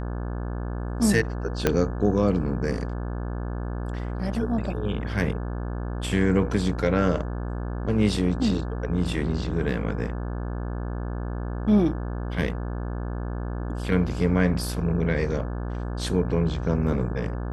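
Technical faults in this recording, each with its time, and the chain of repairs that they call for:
buzz 60 Hz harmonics 29 -30 dBFS
1.67 pop -6 dBFS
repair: de-click; de-hum 60 Hz, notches 29

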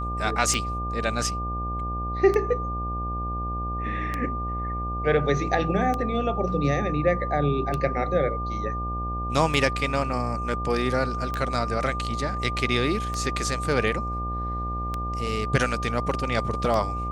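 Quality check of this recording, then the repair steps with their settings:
buzz 60 Hz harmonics 14 -31 dBFS
tick 33 1/3 rpm
tone 1200 Hz -30 dBFS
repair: de-click; de-hum 60 Hz, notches 14; notch 1200 Hz, Q 30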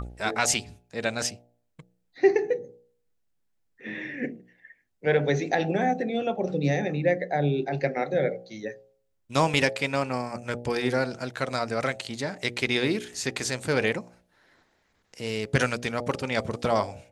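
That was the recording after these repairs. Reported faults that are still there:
none

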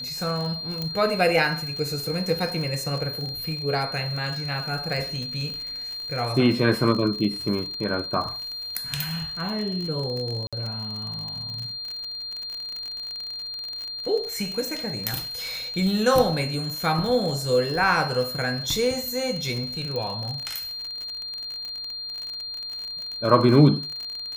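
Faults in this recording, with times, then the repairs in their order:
crackle 46/s -29 dBFS
tone 4200 Hz -31 dBFS
0.82 pop -15 dBFS
10.47–10.53 gap 56 ms
19.96 pop -18 dBFS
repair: de-click; notch 4200 Hz, Q 30; interpolate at 10.47, 56 ms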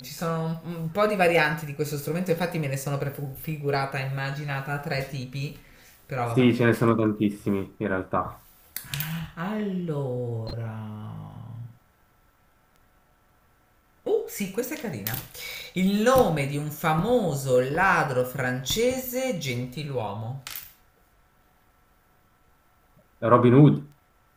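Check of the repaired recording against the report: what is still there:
none

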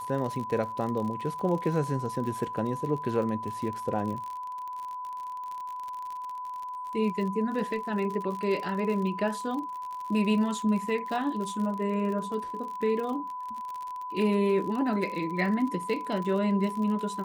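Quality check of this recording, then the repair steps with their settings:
crackle 44/s -34 dBFS
tone 1000 Hz -34 dBFS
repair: de-click; notch 1000 Hz, Q 30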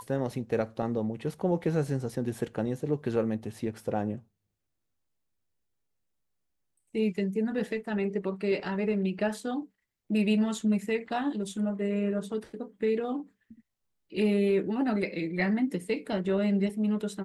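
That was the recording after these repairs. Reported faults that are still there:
none

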